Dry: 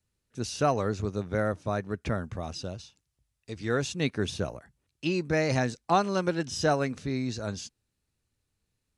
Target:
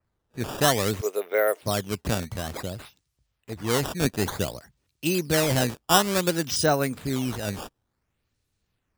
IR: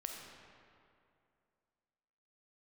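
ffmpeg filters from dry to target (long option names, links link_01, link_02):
-filter_complex "[0:a]asettb=1/sr,asplit=3[link_01][link_02][link_03];[link_01]atrim=end=1.014[link_04];[link_02]atrim=start=1.01:end=1.63,asetpts=PTS-STARTPTS,afade=type=in:duration=0.004:curve=qsin,afade=type=out:start_time=0.616:duration=0.004:curve=qsin,highpass=frequency=410:width=0.5412,highpass=frequency=410:width=1.3066,equalizer=frequency=430:width_type=q:width=4:gain=8,equalizer=frequency=660:width_type=q:width=4:gain=6,equalizer=frequency=2100:width_type=q:width=4:gain=9,equalizer=frequency=2900:width_type=q:width=4:gain=7,equalizer=frequency=4200:width_type=q:width=4:gain=-4,lowpass=frequency=5000:width=0.5412,lowpass=frequency=5000:width=1.3066[link_05];[link_03]atrim=start=1.626[link_06];[link_04][link_05]acrossfade=duration=0.004:curve1=hsin:curve2=qsin[link_07];[link_07][link_06]acrossfade=duration=0.004:curve1=qsin:curve2=hsin,acrusher=samples=12:mix=1:aa=0.000001:lfo=1:lforange=19.2:lforate=0.56,adynamicequalizer=threshold=0.00562:dfrequency=3300:dqfactor=0.7:tfrequency=3300:tqfactor=0.7:attack=5:release=100:ratio=0.375:range=3:mode=boostabove:tftype=highshelf,volume=3dB"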